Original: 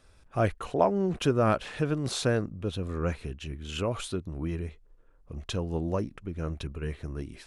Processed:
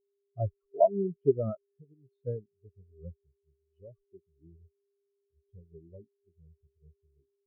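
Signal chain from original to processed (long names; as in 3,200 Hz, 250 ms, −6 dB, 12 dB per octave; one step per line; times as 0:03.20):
0:01.62–0:02.27: downward compressor 2.5 to 1, threshold −30 dBFS, peak gain reduction 6 dB
steady tone 400 Hz −38 dBFS
every bin expanded away from the loudest bin 4 to 1
level −1.5 dB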